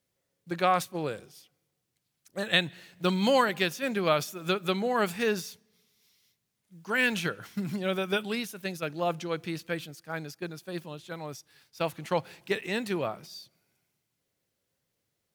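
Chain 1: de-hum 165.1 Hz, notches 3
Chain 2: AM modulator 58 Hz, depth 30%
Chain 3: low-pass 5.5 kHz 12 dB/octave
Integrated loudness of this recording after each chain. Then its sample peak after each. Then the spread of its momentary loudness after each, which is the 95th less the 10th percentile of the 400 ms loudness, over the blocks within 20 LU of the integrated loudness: -30.0 LUFS, -32.0 LUFS, -30.0 LUFS; -9.0 dBFS, -10.5 dBFS, -9.5 dBFS; 14 LU, 14 LU, 14 LU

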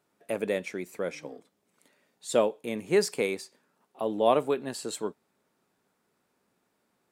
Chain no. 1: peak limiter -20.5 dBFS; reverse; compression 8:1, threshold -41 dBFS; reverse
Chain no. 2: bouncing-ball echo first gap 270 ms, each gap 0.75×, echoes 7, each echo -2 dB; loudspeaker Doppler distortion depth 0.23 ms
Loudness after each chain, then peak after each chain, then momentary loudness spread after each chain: -45.5 LUFS, -26.5 LUFS; -30.5 dBFS, -9.0 dBFS; 7 LU, 14 LU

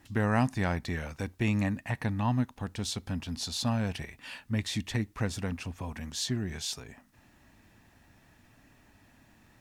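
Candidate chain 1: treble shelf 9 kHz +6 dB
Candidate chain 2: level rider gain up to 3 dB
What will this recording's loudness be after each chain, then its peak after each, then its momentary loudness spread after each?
-32.0 LUFS, -29.5 LUFS; -13.5 dBFS, -13.0 dBFS; 10 LU, 9 LU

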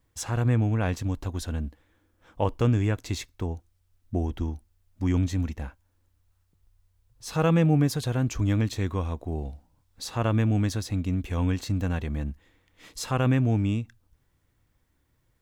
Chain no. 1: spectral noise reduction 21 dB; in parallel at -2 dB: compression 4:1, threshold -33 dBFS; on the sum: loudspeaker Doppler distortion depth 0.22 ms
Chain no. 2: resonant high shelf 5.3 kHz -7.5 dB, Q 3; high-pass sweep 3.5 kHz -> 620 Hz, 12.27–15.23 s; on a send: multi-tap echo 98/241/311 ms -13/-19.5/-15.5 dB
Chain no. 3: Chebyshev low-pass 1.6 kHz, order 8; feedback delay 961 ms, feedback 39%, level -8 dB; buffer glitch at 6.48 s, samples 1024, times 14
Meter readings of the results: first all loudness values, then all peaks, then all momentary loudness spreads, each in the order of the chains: -27.0 LUFS, -34.5 LUFS, -28.0 LUFS; -9.0 dBFS, -14.5 dBFS, -11.0 dBFS; 11 LU, 18 LU, 15 LU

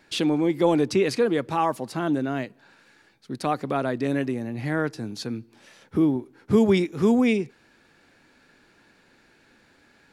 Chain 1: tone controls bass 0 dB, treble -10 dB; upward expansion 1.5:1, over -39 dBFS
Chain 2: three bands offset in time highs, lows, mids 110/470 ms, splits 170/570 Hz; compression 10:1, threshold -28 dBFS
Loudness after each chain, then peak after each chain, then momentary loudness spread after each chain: -26.5 LUFS, -33.5 LUFS; -8.5 dBFS, -18.5 dBFS; 17 LU, 5 LU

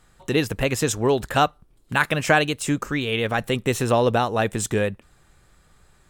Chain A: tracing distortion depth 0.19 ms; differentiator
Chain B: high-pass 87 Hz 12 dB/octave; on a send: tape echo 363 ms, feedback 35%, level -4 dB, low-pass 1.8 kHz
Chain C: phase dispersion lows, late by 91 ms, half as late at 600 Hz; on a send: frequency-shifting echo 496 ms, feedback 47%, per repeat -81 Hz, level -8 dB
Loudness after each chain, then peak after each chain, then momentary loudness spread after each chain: -31.5 LUFS, -22.0 LUFS, -22.0 LUFS; -3.0 dBFS, -1.5 dBFS, -4.5 dBFS; 9 LU, 10 LU, 11 LU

